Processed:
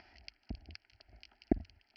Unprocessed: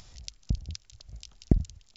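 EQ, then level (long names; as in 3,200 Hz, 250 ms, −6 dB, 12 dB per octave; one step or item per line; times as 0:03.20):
high-pass filter 470 Hz 6 dB per octave
Butterworth low-pass 4,800 Hz 72 dB per octave
phaser with its sweep stopped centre 750 Hz, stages 8
+4.5 dB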